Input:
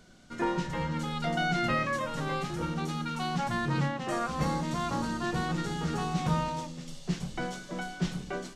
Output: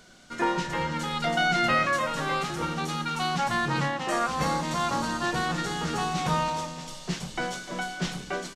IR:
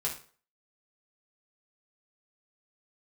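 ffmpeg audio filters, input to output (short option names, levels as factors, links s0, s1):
-af "lowshelf=f=380:g=-9.5,aecho=1:1:299|598|897:0.178|0.064|0.023,volume=2.24"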